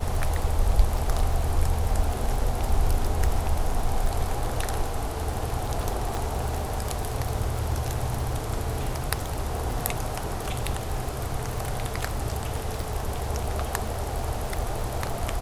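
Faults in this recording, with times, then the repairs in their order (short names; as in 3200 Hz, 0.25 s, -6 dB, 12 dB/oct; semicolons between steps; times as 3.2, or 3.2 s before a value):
crackle 43/s -29 dBFS
6.15 pop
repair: de-click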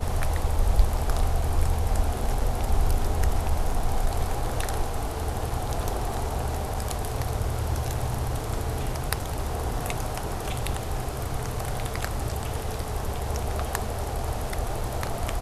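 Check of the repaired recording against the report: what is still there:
6.15 pop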